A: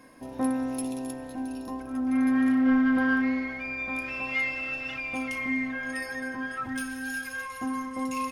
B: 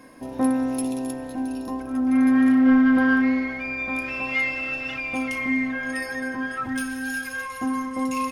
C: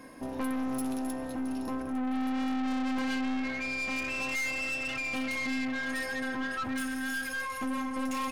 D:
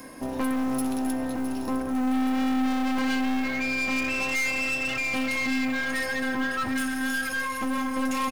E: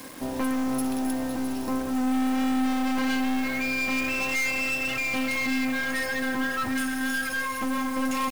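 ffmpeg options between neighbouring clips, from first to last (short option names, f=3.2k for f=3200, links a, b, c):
-af "equalizer=f=330:t=o:w=1.9:g=2,volume=4dB"
-af "aeval=exprs='(tanh(31.6*val(0)+0.35)-tanh(0.35))/31.6':c=same"
-filter_complex "[0:a]acrossover=split=300|4600[a][b][c];[c]acompressor=mode=upward:threshold=-53dB:ratio=2.5[d];[a][b][d]amix=inputs=3:normalize=0,acrusher=bits=7:mode=log:mix=0:aa=0.000001,aecho=1:1:658:0.211,volume=5.5dB"
-af "acrusher=bits=6:mix=0:aa=0.000001"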